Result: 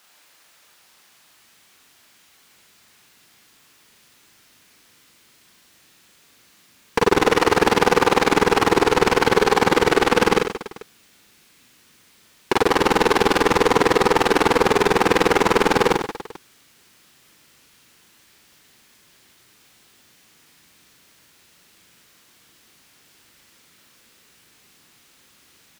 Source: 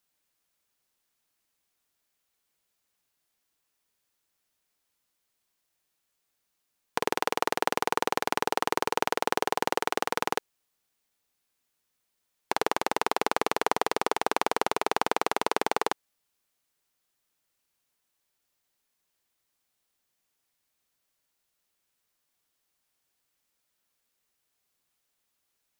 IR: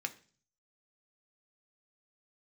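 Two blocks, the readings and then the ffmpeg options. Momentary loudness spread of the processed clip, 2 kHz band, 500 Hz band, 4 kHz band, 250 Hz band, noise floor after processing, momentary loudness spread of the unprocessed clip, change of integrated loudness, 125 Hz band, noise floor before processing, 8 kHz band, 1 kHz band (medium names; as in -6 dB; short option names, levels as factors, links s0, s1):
5 LU, +11.5 dB, +13.5 dB, +10.0 dB, +16.0 dB, -56 dBFS, 3 LU, +11.0 dB, +19.5 dB, -79 dBFS, +8.0 dB, +8.5 dB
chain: -filter_complex "[0:a]asubboost=boost=7:cutoff=250,asplit=2[s0][s1];[s1]highpass=f=720:p=1,volume=50.1,asoftclip=type=tanh:threshold=0.596[s2];[s0][s2]amix=inputs=2:normalize=0,lowpass=f=3700:p=1,volume=0.501,aecho=1:1:40|96|174.4|284.2|437.8:0.631|0.398|0.251|0.158|0.1"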